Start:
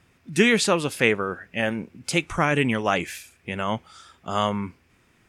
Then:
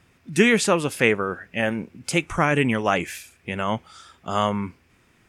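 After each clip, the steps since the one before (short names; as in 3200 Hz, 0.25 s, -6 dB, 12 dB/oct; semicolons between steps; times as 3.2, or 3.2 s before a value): dynamic EQ 4100 Hz, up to -6 dB, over -41 dBFS, Q 2; gain +1.5 dB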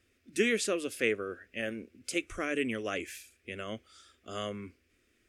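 fixed phaser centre 370 Hz, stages 4; gain -8.5 dB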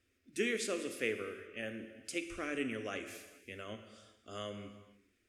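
non-linear reverb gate 0.49 s falling, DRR 7 dB; gain -6.5 dB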